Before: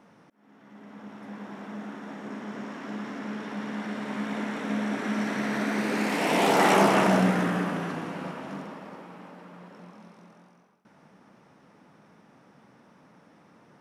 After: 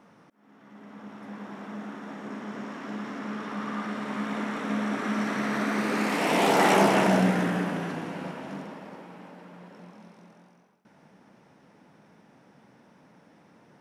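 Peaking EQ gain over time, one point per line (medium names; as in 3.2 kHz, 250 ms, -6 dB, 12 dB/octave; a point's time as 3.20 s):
peaking EQ 1.2 kHz 0.29 oct
3.04 s +2.5 dB
3.75 s +13 dB
3.98 s +6.5 dB
6.00 s +6.5 dB
6.92 s -5 dB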